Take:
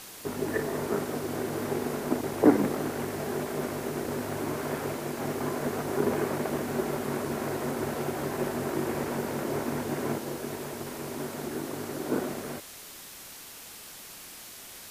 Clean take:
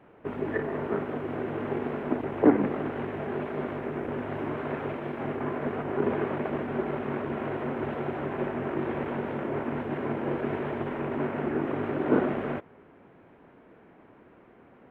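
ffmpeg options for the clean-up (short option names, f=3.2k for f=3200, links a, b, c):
-af "afwtdn=0.0063,asetnsamples=n=441:p=0,asendcmd='10.18 volume volume 6dB',volume=0dB"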